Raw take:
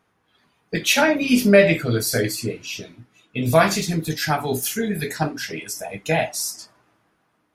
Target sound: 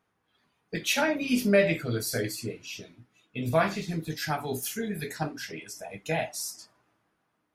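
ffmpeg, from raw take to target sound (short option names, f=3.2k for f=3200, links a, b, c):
-filter_complex "[0:a]asettb=1/sr,asplit=3[a][b][c];[a]atrim=end=3.494[d];[b]atrim=start=3.49:end=4.16,asetpts=PTS-STARTPTS,afade=t=in:d=0.004:c=qsin,afade=t=out:st=0.666:d=0.004:c=qsin,acrossover=split=3700[e][f];[f]acompressor=threshold=-40dB:ratio=4:attack=1:release=60[g];[e][g]amix=inputs=2:normalize=0[h];[c]atrim=start=4.156[i];[d][h]acrossfade=d=0.004:c1=hsin:c2=qsin[j];[j][i]acrossfade=d=0.004:c1=qsin:c2=hsin,asettb=1/sr,asplit=3[k][l][m];[k]atrim=end=5.514[n];[l]atrim=start=5.51:end=5.91,asetpts=PTS-STARTPTS,afade=t=in:d=0.004:c=qsin,afade=t=out:st=0.396:d=0.004:c=qsin,highshelf=f=10k:g=-9.5[o];[m]atrim=start=5.906[p];[n][o]acrossfade=d=0.004:c1=hsin:c2=qsin[q];[q][p]acrossfade=d=0.004:c1=qsin:c2=hsin,volume=-8.5dB"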